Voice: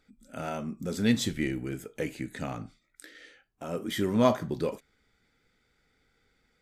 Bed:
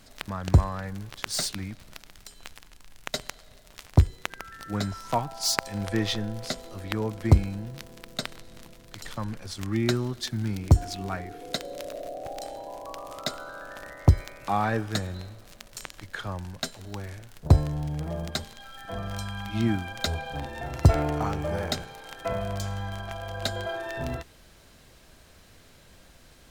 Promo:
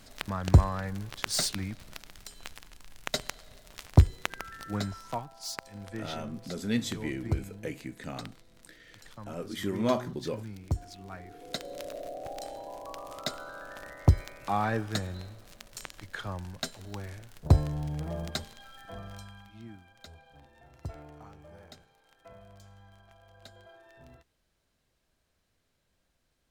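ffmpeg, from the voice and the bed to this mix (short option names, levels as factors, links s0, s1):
-filter_complex "[0:a]adelay=5650,volume=0.596[s0];[1:a]volume=2.99,afade=t=out:st=4.44:d=0.87:silence=0.237137,afade=t=in:st=11.07:d=0.71:silence=0.334965,afade=t=out:st=18.29:d=1.28:silence=0.112202[s1];[s0][s1]amix=inputs=2:normalize=0"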